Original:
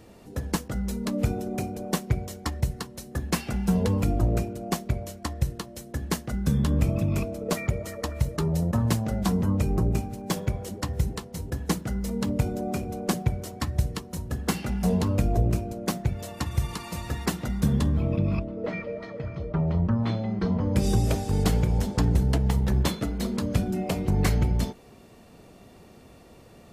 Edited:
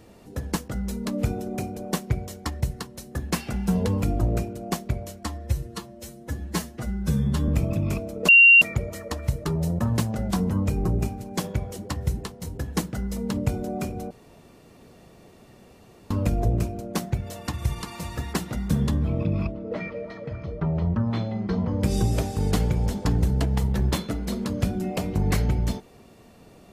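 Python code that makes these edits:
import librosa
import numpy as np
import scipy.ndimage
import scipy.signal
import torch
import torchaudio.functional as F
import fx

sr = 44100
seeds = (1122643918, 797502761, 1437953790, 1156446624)

y = fx.edit(x, sr, fx.stretch_span(start_s=5.25, length_s=1.49, factor=1.5),
    fx.insert_tone(at_s=7.54, length_s=0.33, hz=2760.0, db=-9.0),
    fx.room_tone_fill(start_s=13.03, length_s=2.0), tone=tone)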